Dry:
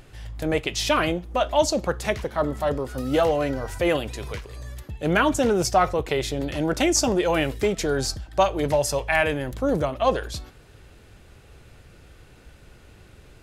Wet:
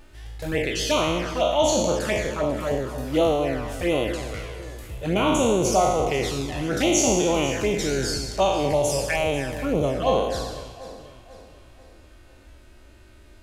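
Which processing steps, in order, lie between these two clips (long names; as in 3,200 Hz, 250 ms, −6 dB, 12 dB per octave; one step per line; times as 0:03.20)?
peak hold with a decay on every bin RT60 1.21 s
flanger swept by the level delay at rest 3.6 ms, full sweep at −15.5 dBFS
delay that swaps between a low-pass and a high-pass 246 ms, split 1,100 Hz, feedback 65%, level −11.5 dB
level −1.5 dB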